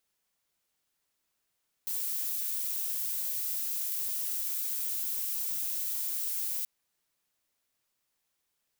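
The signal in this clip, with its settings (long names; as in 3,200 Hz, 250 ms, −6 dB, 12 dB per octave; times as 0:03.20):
noise violet, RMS −33 dBFS 4.78 s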